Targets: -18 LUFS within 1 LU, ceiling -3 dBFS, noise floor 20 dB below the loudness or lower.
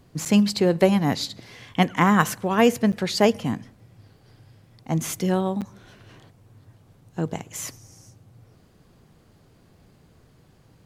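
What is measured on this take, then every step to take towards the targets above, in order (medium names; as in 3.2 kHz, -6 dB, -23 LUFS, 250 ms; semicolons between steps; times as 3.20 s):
dropouts 3; longest dropout 7.6 ms; loudness -22.5 LUFS; peak level -3.5 dBFS; loudness target -18.0 LUFS
-> interpolate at 0.25/2.92/5.61 s, 7.6 ms; trim +4.5 dB; peak limiter -3 dBFS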